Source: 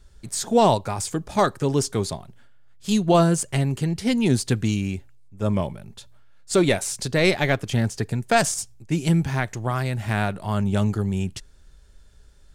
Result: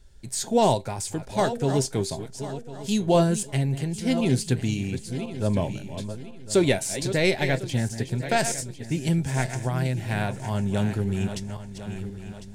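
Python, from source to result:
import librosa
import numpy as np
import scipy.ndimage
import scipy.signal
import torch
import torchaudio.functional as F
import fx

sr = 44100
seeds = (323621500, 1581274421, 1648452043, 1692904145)

p1 = fx.reverse_delay_fb(x, sr, ms=526, feedback_pct=52, wet_db=-10.5)
p2 = fx.peak_eq(p1, sr, hz=1200.0, db=-11.0, octaves=0.29)
p3 = fx.rider(p2, sr, range_db=10, speed_s=2.0)
p4 = p2 + (p3 * 10.0 ** (-2.0 / 20.0))
p5 = fx.comb_fb(p4, sr, f0_hz=130.0, decay_s=0.16, harmonics='all', damping=0.0, mix_pct=50)
y = p5 * 10.0 ** (-5.0 / 20.0)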